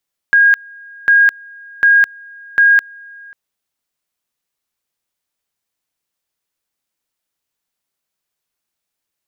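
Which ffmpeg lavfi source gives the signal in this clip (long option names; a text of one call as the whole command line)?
ffmpeg -f lavfi -i "aevalsrc='pow(10,(-6-27.5*gte(mod(t,0.75),0.21))/20)*sin(2*PI*1630*t)':duration=3:sample_rate=44100" out.wav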